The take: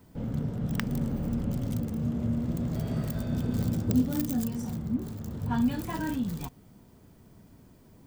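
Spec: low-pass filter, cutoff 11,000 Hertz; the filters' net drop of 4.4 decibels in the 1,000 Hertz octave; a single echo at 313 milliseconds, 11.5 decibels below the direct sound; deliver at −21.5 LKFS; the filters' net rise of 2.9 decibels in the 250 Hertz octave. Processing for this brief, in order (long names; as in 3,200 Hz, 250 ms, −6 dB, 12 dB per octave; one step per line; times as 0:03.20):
low-pass filter 11,000 Hz
parametric band 250 Hz +3.5 dB
parametric band 1,000 Hz −5.5 dB
single-tap delay 313 ms −11.5 dB
level +6.5 dB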